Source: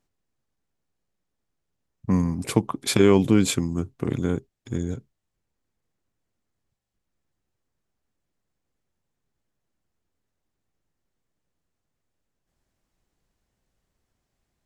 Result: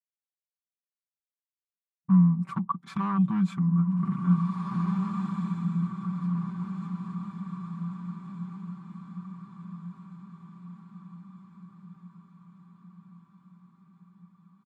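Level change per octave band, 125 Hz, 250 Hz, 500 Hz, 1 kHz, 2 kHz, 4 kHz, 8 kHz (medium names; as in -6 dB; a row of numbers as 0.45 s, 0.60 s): +2.0 dB, -0.5 dB, -28.5 dB, +1.5 dB, -12.0 dB, under -20 dB, under -25 dB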